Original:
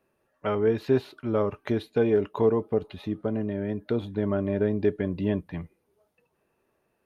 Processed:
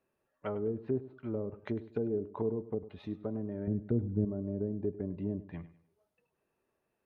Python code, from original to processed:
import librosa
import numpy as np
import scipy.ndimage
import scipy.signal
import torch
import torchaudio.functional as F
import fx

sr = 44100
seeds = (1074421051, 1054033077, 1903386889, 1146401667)

y = fx.low_shelf(x, sr, hz=290.0, db=12.0, at=(3.67, 4.25))
y = fx.env_lowpass_down(y, sr, base_hz=420.0, full_db=-21.5)
y = fx.echo_feedback(y, sr, ms=101, feedback_pct=32, wet_db=-16.0)
y = y * librosa.db_to_amplitude(-8.5)